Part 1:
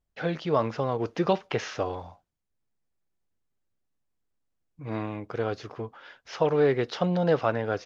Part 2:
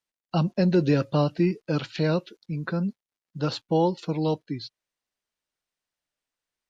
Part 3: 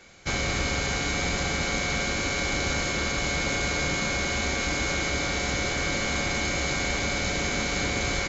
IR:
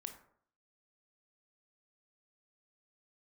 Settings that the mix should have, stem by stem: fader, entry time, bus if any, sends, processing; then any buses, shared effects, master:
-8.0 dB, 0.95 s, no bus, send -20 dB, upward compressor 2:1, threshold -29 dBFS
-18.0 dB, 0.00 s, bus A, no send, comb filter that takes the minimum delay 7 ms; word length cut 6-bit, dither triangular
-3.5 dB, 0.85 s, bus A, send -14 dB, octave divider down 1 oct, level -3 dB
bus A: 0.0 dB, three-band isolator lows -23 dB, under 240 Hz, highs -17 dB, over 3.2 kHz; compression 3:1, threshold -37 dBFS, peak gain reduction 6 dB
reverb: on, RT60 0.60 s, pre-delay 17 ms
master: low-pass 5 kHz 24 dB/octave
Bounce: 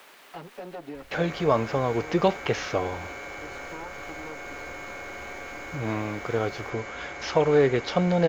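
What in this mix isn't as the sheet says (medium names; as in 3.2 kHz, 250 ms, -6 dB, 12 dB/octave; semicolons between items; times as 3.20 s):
stem 1 -8.0 dB -> +2.0 dB; stem 2 -18.0 dB -> -7.0 dB; master: missing low-pass 5 kHz 24 dB/octave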